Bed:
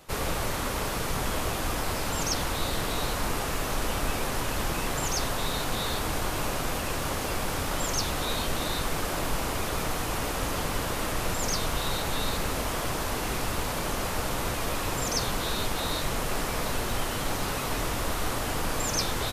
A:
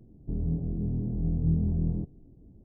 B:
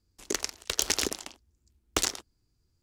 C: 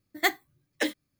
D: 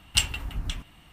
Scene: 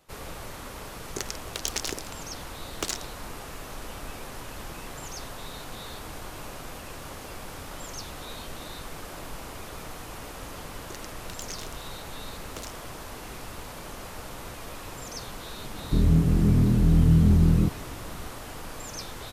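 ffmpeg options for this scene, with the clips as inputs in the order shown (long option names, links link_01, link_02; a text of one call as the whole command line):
ffmpeg -i bed.wav -i cue0.wav -i cue1.wav -filter_complex "[2:a]asplit=2[link_01][link_02];[0:a]volume=-10dB[link_03];[1:a]alimiter=level_in=20dB:limit=-1dB:release=50:level=0:latency=1[link_04];[link_01]atrim=end=2.82,asetpts=PTS-STARTPTS,volume=-4dB,afade=type=in:duration=0.004:curve=hsin,afade=type=out:start_time=2.816:duration=0.004:curve=hsin,adelay=860[link_05];[link_02]atrim=end=2.82,asetpts=PTS-STARTPTS,volume=-15dB,afade=type=in:duration=0.004:curve=hsin,afade=type=out:start_time=2.816:duration=0.004:curve=hsin,adelay=10600[link_06];[link_04]atrim=end=2.64,asetpts=PTS-STARTPTS,volume=-10dB,afade=type=in:duration=0.004:curve=hsin,afade=type=out:start_time=2.636:duration=0.004:curve=hsin,adelay=15640[link_07];[link_03][link_05][link_06][link_07]amix=inputs=4:normalize=0" out.wav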